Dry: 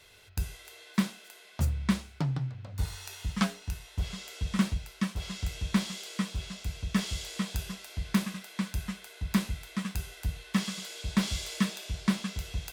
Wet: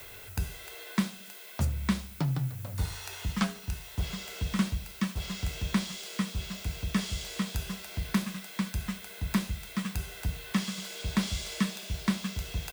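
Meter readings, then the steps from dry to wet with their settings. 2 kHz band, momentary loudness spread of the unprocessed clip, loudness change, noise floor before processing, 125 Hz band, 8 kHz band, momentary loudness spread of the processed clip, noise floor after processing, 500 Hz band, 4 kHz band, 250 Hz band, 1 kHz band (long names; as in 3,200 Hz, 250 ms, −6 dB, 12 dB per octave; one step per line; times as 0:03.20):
+0.5 dB, 8 LU, 0.0 dB, −54 dBFS, 0.0 dB, +0.5 dB, 6 LU, −47 dBFS, +1.0 dB, +0.5 dB, −0.5 dB, +0.5 dB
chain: background noise violet −53 dBFS
repeating echo 73 ms, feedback 49%, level −20 dB
multiband upward and downward compressor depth 40%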